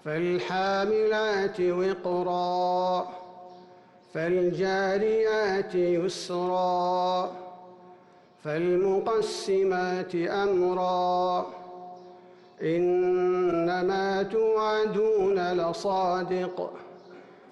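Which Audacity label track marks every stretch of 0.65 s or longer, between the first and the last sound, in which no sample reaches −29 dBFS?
3.030000	4.150000	silence
7.310000	8.450000	silence
11.450000	12.620000	silence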